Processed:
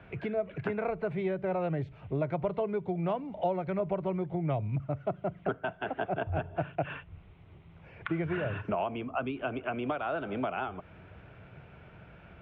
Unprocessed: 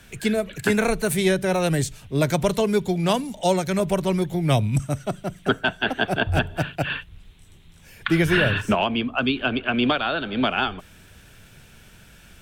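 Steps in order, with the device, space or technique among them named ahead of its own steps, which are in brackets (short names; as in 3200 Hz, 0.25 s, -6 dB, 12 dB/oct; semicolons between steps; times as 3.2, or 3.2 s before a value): bass amplifier (compressor 4:1, threshold -31 dBFS, peak gain reduction 14 dB; speaker cabinet 76–2100 Hz, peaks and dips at 230 Hz -8 dB, 660 Hz +4 dB, 1700 Hz -9 dB); gain +1.5 dB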